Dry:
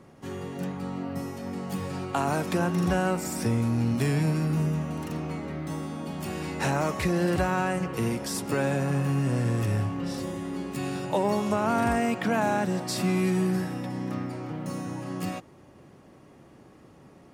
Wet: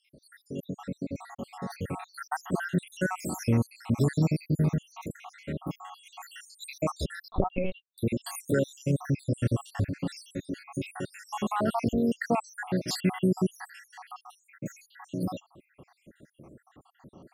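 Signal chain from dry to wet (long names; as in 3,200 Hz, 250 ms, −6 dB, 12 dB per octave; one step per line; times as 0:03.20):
time-frequency cells dropped at random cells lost 79%
0:07.28–0:07.98: linear-prediction vocoder at 8 kHz pitch kept
level +2.5 dB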